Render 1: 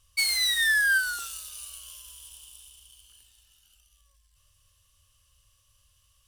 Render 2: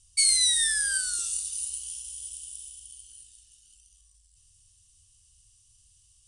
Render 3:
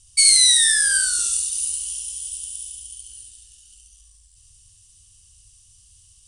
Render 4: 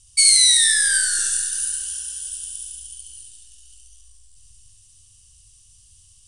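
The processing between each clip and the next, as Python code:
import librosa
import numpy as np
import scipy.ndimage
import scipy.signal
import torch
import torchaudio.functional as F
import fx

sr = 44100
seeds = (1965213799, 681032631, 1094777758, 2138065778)

y1 = fx.curve_eq(x, sr, hz=(380.0, 600.0, 9500.0, 13000.0), db=(0, -25, 11, -30))
y1 = y1 * librosa.db_to_amplitude(1.0)
y2 = y1 + 10.0 ** (-4.0 / 20.0) * np.pad(y1, (int(71 * sr / 1000.0), 0))[:len(y1)]
y2 = y2 * librosa.db_to_amplitude(7.0)
y3 = fx.rev_freeverb(y2, sr, rt60_s=3.4, hf_ratio=0.3, predelay_ms=100, drr_db=9.0)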